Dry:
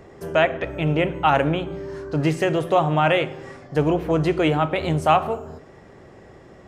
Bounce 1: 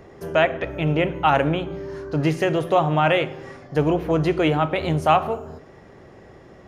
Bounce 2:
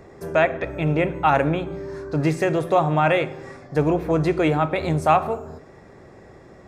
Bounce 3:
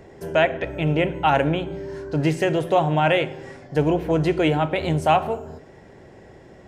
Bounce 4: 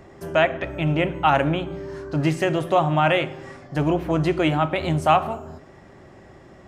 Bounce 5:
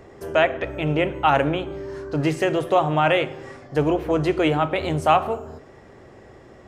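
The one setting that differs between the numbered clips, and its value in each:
band-stop, frequency: 7.9 kHz, 3 kHz, 1.2 kHz, 460 Hz, 170 Hz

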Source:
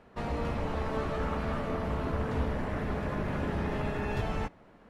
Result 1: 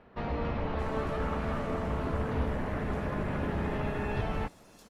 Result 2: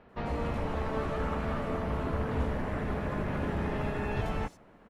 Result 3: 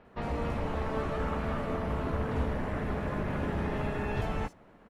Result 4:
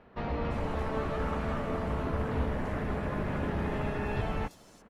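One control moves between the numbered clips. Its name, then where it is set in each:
bands offset in time, time: 620 ms, 90 ms, 50 ms, 340 ms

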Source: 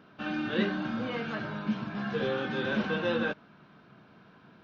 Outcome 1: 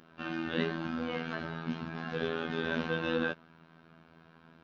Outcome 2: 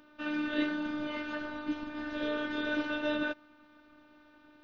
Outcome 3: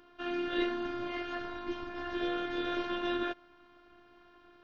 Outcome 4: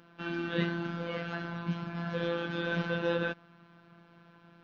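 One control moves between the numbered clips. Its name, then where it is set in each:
robot voice, frequency: 82 Hz, 300 Hz, 350 Hz, 170 Hz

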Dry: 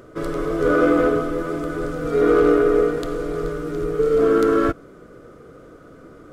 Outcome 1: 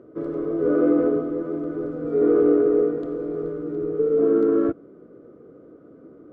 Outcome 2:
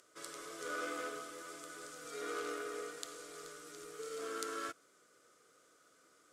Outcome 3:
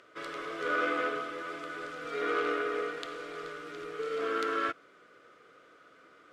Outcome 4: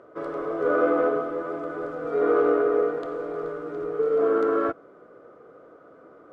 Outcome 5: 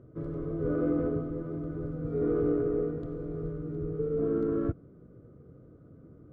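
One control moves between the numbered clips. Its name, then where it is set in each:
band-pass filter, frequency: 310 Hz, 7.7 kHz, 2.7 kHz, 780 Hz, 110 Hz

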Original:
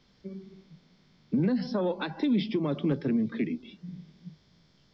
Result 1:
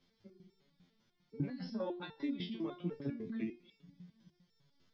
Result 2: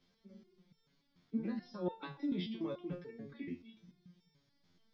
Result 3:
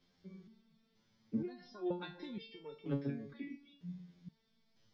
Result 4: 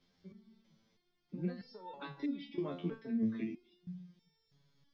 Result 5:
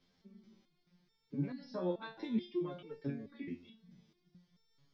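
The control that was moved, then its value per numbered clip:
resonator arpeggio, rate: 10 Hz, 6.9 Hz, 2.1 Hz, 3.1 Hz, 4.6 Hz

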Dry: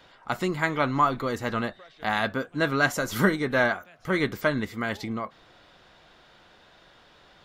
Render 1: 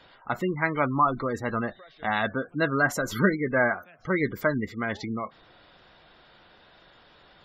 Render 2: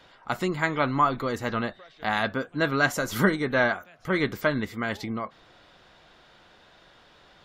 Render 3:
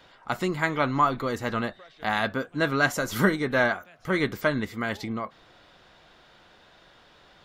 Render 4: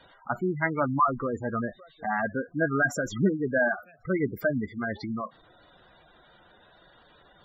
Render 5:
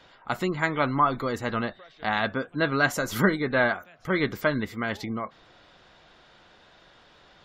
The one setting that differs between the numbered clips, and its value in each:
spectral gate, under each frame's peak: -20 dB, -45 dB, -60 dB, -10 dB, -35 dB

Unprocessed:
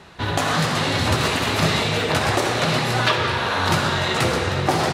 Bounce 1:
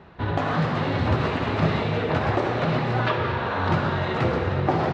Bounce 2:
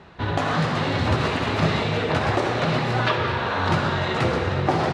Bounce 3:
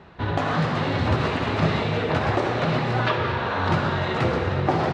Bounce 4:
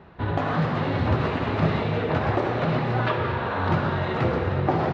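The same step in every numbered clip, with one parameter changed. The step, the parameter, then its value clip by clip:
tape spacing loss, at 10 kHz: 37 dB, 20 dB, 29 dB, 46 dB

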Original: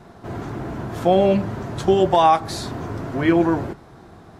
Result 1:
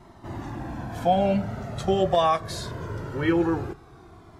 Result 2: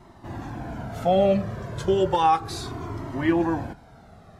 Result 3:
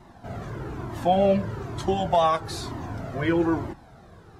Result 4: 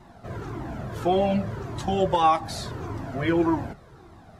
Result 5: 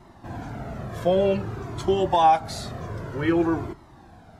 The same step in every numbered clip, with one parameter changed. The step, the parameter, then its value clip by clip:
Shepard-style flanger, rate: 0.22 Hz, 0.33 Hz, 1.1 Hz, 1.7 Hz, 0.53 Hz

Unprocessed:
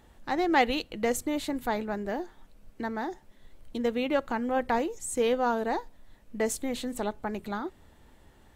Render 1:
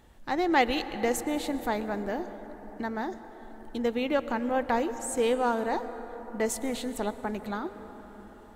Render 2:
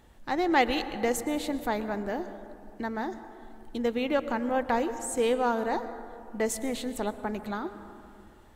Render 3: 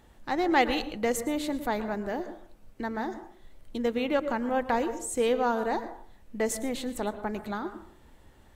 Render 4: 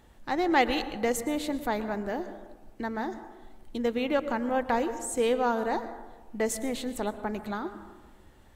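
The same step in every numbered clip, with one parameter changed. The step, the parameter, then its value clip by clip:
plate-style reverb, RT60: 5.3 s, 2.4 s, 0.52 s, 1.2 s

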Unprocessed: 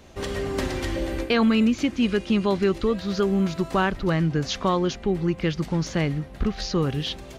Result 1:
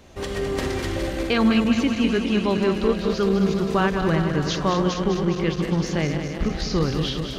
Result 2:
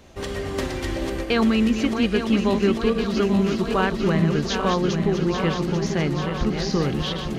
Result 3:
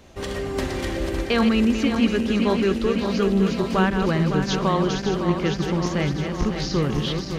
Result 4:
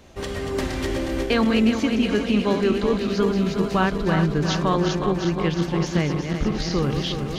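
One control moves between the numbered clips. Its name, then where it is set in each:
backward echo that repeats, time: 103 ms, 420 ms, 279 ms, 181 ms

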